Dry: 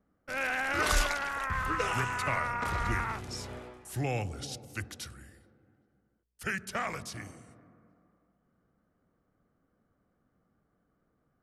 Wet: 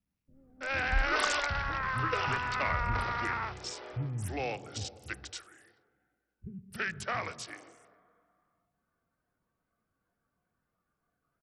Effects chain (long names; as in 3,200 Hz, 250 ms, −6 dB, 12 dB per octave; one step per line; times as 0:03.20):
multiband delay without the direct sound lows, highs 330 ms, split 260 Hz
noise reduction from a noise print of the clip's start 9 dB
SBC 64 kbit/s 44,100 Hz